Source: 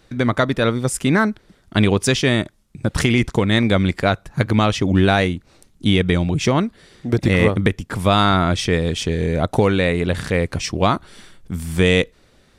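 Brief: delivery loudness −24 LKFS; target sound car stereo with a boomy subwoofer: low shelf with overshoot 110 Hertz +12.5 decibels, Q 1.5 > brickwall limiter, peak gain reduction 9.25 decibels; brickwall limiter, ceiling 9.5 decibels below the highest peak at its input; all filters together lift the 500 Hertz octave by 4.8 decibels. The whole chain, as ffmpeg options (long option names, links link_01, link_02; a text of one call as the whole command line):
ffmpeg -i in.wav -af "equalizer=frequency=500:width_type=o:gain=6.5,alimiter=limit=-10dB:level=0:latency=1,lowshelf=frequency=110:width_type=q:width=1.5:gain=12.5,volume=-4.5dB,alimiter=limit=-13.5dB:level=0:latency=1" out.wav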